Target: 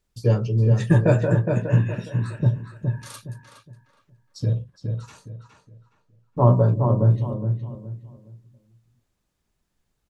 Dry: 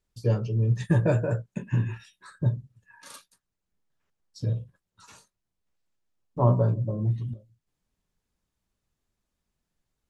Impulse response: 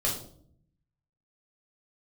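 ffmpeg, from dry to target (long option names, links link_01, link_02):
-filter_complex "[0:a]asettb=1/sr,asplit=3[link_01][link_02][link_03];[link_01]atrim=end=4.554[link_04];[link_02]atrim=start=4.55:end=6.45,asetpts=PTS-STARTPTS,afade=type=in:duration=0.004:curve=qsin,afade=type=out:start_time=1.896:duration=0.004:curve=qsin,highshelf=frequency=6000:gain=-6.5[link_05];[link_03]atrim=start=6.446[link_06];[link_04][link_05]acrossfade=duration=0.004:curve1=hsin:curve2=qsin[link_07];[link_07][link_06]acrossfade=duration=0.004:curve1=qsin:curve2=hsin,asplit=2[link_08][link_09];[link_09]adelay=415,lowpass=frequency=2500:poles=1,volume=-5dB,asplit=2[link_10][link_11];[link_11]adelay=415,lowpass=frequency=2500:poles=1,volume=0.29,asplit=2[link_12][link_13];[link_13]adelay=415,lowpass=frequency=2500:poles=1,volume=0.29,asplit=2[link_14][link_15];[link_15]adelay=415,lowpass=frequency=2500:poles=1,volume=0.29[link_16];[link_08][link_10][link_12][link_14][link_16]amix=inputs=5:normalize=0,volume=5dB"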